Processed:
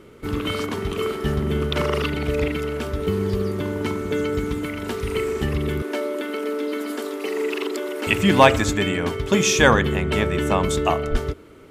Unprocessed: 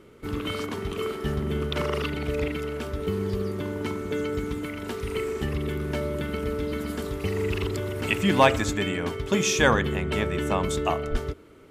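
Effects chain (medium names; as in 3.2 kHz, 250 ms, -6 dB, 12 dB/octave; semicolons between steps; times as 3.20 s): 5.82–8.07 s: elliptic high-pass 270 Hz, stop band 60 dB; trim +5 dB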